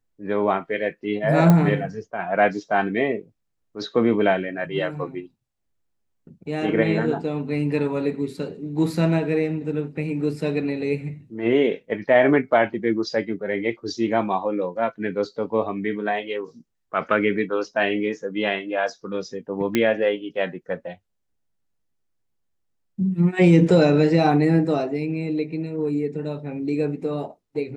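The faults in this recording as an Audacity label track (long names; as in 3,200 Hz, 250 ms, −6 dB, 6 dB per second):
1.500000	1.500000	click −6 dBFS
19.750000	19.750000	click −7 dBFS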